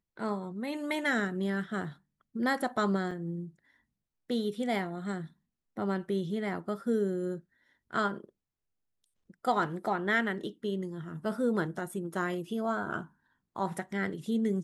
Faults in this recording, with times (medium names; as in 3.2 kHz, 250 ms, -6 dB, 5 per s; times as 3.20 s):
3.11 s: dropout 3.1 ms